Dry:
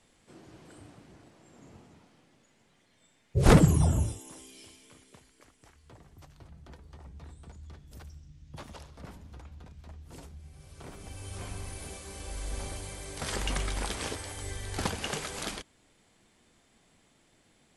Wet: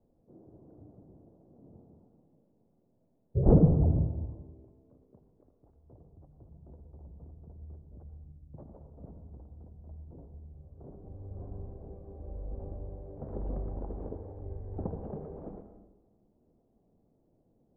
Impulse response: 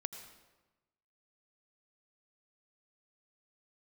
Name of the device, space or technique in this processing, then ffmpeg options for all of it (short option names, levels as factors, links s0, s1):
next room: -filter_complex "[0:a]lowpass=f=650:w=0.5412,lowpass=f=650:w=1.3066[s0];[1:a]atrim=start_sample=2205[s1];[s0][s1]afir=irnorm=-1:irlink=0"